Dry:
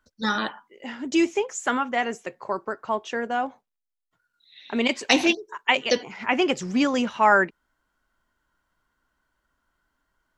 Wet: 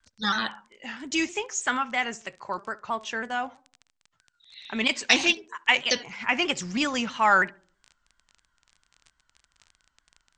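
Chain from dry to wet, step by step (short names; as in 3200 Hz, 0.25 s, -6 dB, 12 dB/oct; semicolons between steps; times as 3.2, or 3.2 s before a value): crackle 18/s -37 dBFS; bell 400 Hz -12 dB 2.4 oct; in parallel at -7 dB: soft clip -15.5 dBFS, distortion -15 dB; on the sum: steep low-pass 8800 Hz 96 dB/oct; on a send: darkening echo 69 ms, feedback 42%, low-pass 1100 Hz, level -19 dB; on the sum: shaped vibrato saw down 3.1 Hz, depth 100 cents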